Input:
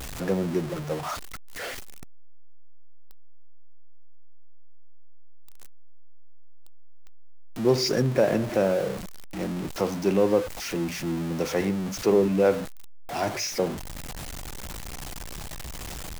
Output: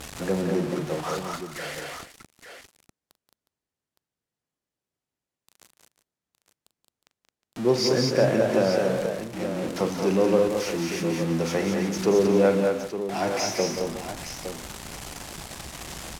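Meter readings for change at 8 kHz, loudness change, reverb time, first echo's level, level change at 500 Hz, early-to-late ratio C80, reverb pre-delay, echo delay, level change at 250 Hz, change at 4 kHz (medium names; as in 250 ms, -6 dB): +2.0 dB, +2.0 dB, no reverb, -12.5 dB, +2.0 dB, no reverb, no reverb, 42 ms, +1.5 dB, +2.5 dB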